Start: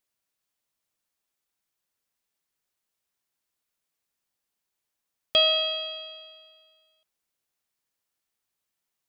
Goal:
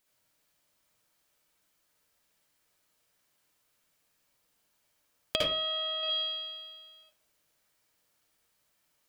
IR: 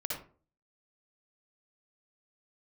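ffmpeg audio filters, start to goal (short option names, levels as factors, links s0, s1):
-filter_complex "[0:a]acompressor=threshold=0.0178:ratio=6,asettb=1/sr,asplit=3[s0][s1][s2];[s0]atrim=end=5.364[s3];[s1]atrim=start=5.36:end=6.03,asetpts=PTS-STARTPTS,afade=t=in:d=0.004:c=qsin,afade=t=out:st=0.666:d=0.004:c=qsin,highpass=360,lowpass=2200[s4];[s2]atrim=start=6.026[s5];[s3][s4]acrossfade=d=0.004:c1=hsin:c2=qsin[s6];[s6][s5]acrossfade=d=0.004:c1=qsin:c2=hsin[s7];[1:a]atrim=start_sample=2205,afade=t=out:st=0.38:d=0.01,atrim=end_sample=17199[s8];[s7][s8]afir=irnorm=-1:irlink=0,volume=2.51"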